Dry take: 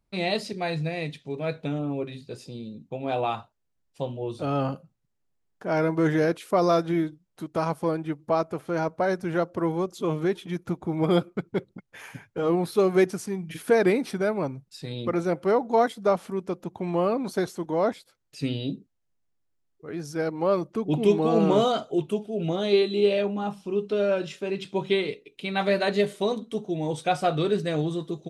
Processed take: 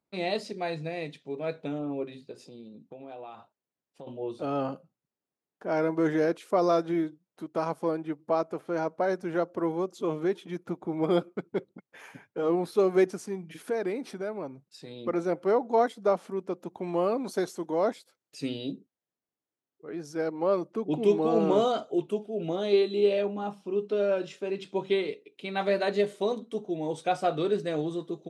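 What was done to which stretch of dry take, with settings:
2.31–4.07 s: compression, threshold -37 dBFS
13.47–15.06 s: compression 1.5:1, threshold -37 dBFS
16.60–18.72 s: treble shelf 4.5 kHz +7 dB
whole clip: dynamic bell 6.9 kHz, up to +4 dB, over -52 dBFS, Q 1; high-pass 290 Hz 12 dB/octave; tilt EQ -2 dB/octave; trim -3.5 dB

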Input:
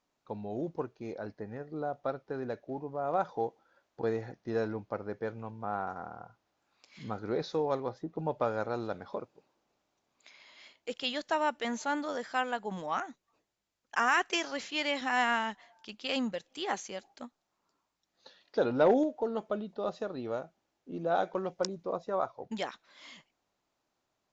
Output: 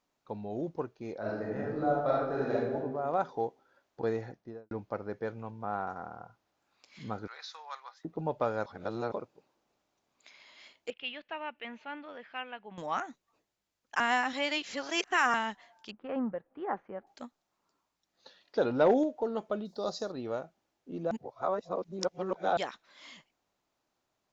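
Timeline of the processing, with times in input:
1.19–2.74 s: reverb throw, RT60 1.1 s, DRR -6 dB
4.22–4.71 s: studio fade out
7.27–8.05 s: high-pass 1.1 kHz 24 dB/octave
8.66–9.12 s: reverse
10.90–12.78 s: four-pole ladder low-pass 2.9 kHz, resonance 65%
14.00–15.34 s: reverse
15.91–17.07 s: low-pass 1.5 kHz 24 dB/octave
19.65–20.12 s: resonant high shelf 3.6 kHz +9.5 dB, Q 3
21.11–22.57 s: reverse

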